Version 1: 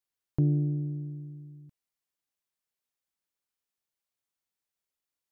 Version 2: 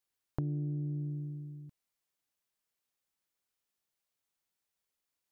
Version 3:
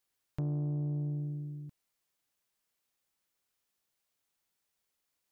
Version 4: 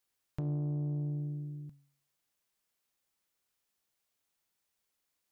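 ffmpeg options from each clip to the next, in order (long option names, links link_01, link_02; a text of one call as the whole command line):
ffmpeg -i in.wav -af "acompressor=threshold=-35dB:ratio=6,volume=2dB" out.wav
ffmpeg -i in.wav -af "asoftclip=type=tanh:threshold=-32dB,volume=4dB" out.wav
ffmpeg -i in.wav -af "bandreject=frequency=141.6:width_type=h:width=4,bandreject=frequency=283.2:width_type=h:width=4,bandreject=frequency=424.8:width_type=h:width=4,bandreject=frequency=566.4:width_type=h:width=4,bandreject=frequency=708:width_type=h:width=4,bandreject=frequency=849.6:width_type=h:width=4,bandreject=frequency=991.2:width_type=h:width=4,bandreject=frequency=1132.8:width_type=h:width=4,bandreject=frequency=1274.4:width_type=h:width=4,bandreject=frequency=1416:width_type=h:width=4,bandreject=frequency=1557.6:width_type=h:width=4,bandreject=frequency=1699.2:width_type=h:width=4,bandreject=frequency=1840.8:width_type=h:width=4,bandreject=frequency=1982.4:width_type=h:width=4,bandreject=frequency=2124:width_type=h:width=4,bandreject=frequency=2265.6:width_type=h:width=4,bandreject=frequency=2407.2:width_type=h:width=4,bandreject=frequency=2548.8:width_type=h:width=4,bandreject=frequency=2690.4:width_type=h:width=4,bandreject=frequency=2832:width_type=h:width=4,bandreject=frequency=2973.6:width_type=h:width=4,bandreject=frequency=3115.2:width_type=h:width=4,bandreject=frequency=3256.8:width_type=h:width=4,bandreject=frequency=3398.4:width_type=h:width=4,bandreject=frequency=3540:width_type=h:width=4,bandreject=frequency=3681.6:width_type=h:width=4,bandreject=frequency=3823.2:width_type=h:width=4,bandreject=frequency=3964.8:width_type=h:width=4,bandreject=frequency=4106.4:width_type=h:width=4,bandreject=frequency=4248:width_type=h:width=4,bandreject=frequency=4389.6:width_type=h:width=4,bandreject=frequency=4531.2:width_type=h:width=4,bandreject=frequency=4672.8:width_type=h:width=4,bandreject=frequency=4814.4:width_type=h:width=4" out.wav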